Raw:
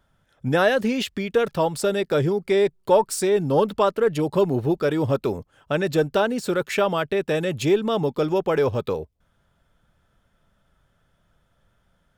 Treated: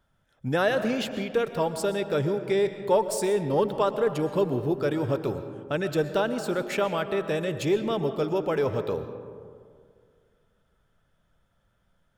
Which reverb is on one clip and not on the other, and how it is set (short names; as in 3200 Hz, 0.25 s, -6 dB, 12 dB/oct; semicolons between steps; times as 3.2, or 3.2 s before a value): digital reverb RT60 2.1 s, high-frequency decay 0.35×, pre-delay 85 ms, DRR 9.5 dB; gain -5 dB